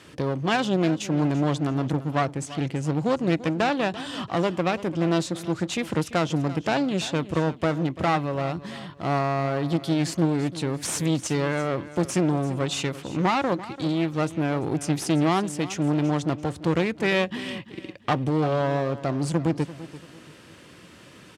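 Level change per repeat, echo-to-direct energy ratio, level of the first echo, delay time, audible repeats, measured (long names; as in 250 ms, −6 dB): −10.0 dB, −15.5 dB, −16.0 dB, 340 ms, 2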